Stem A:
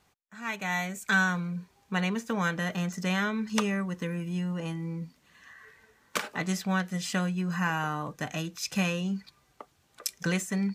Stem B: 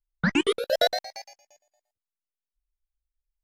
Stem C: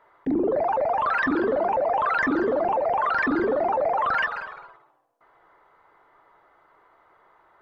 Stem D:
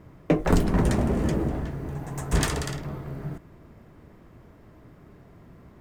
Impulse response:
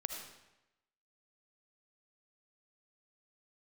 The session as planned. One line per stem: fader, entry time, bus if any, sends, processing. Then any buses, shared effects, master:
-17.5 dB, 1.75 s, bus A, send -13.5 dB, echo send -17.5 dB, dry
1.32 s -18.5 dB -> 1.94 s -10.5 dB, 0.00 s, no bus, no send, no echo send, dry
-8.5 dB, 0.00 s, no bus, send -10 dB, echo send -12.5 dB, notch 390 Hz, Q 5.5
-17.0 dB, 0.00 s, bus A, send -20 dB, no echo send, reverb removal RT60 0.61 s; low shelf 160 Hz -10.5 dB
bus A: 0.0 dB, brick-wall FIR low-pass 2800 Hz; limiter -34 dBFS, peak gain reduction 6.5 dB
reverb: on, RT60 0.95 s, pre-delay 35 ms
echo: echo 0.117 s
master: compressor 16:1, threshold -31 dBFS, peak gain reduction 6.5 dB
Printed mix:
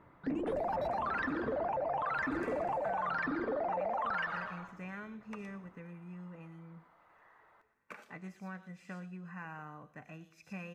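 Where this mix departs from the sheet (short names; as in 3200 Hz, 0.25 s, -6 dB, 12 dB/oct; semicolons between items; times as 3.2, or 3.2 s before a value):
stem B -18.5 dB -> -26.5 dB; stem D -17.0 dB -> -9.0 dB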